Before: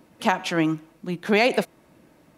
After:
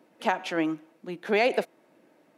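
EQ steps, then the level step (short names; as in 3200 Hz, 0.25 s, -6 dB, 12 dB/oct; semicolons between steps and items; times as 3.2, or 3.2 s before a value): HPF 320 Hz 12 dB/oct; bell 1100 Hz -4.5 dB 0.53 oct; high shelf 3000 Hz -9 dB; -1.5 dB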